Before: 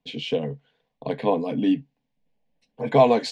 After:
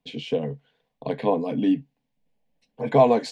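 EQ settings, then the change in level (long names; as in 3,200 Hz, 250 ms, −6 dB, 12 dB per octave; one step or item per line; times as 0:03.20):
dynamic equaliser 3,400 Hz, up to −6 dB, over −39 dBFS, Q 0.8
0.0 dB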